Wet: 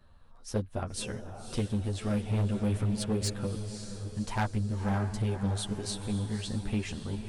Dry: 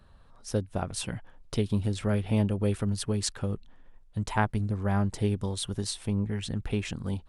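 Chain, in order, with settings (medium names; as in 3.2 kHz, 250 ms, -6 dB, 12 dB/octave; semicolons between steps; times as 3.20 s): echo that smears into a reverb 553 ms, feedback 51%, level -9 dB; chorus voices 4, 1.2 Hz, delay 11 ms, depth 3 ms; overload inside the chain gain 23.5 dB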